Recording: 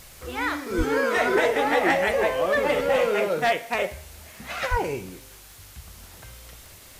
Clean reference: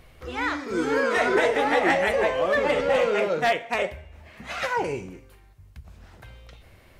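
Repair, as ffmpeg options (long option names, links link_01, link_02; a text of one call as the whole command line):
ffmpeg -i in.wav -filter_complex "[0:a]adeclick=threshold=4,asplit=3[link_01][link_02][link_03];[link_01]afade=type=out:start_time=0.77:duration=0.02[link_04];[link_02]highpass=frequency=140:width=0.5412,highpass=frequency=140:width=1.3066,afade=type=in:start_time=0.77:duration=0.02,afade=type=out:start_time=0.89:duration=0.02[link_05];[link_03]afade=type=in:start_time=0.89:duration=0.02[link_06];[link_04][link_05][link_06]amix=inputs=3:normalize=0,asplit=3[link_07][link_08][link_09];[link_07]afade=type=out:start_time=4.7:duration=0.02[link_10];[link_08]highpass=frequency=140:width=0.5412,highpass=frequency=140:width=1.3066,afade=type=in:start_time=4.7:duration=0.02,afade=type=out:start_time=4.82:duration=0.02[link_11];[link_09]afade=type=in:start_time=4.82:duration=0.02[link_12];[link_10][link_11][link_12]amix=inputs=3:normalize=0,afwtdn=0.0045" out.wav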